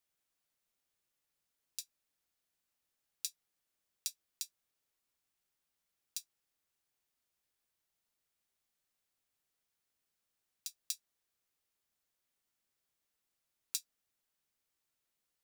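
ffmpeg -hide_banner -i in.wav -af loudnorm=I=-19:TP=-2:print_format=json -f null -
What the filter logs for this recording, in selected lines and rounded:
"input_i" : "-43.7",
"input_tp" : "-11.4",
"input_lra" : "7.2",
"input_thresh" : "-53.9",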